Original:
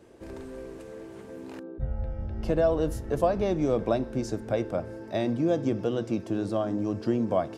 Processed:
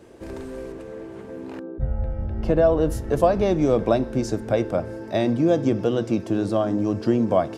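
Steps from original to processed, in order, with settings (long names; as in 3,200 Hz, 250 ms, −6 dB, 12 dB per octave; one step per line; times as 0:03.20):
0:00.72–0:02.90: high-shelf EQ 3,900 Hz −9.5 dB
level +6 dB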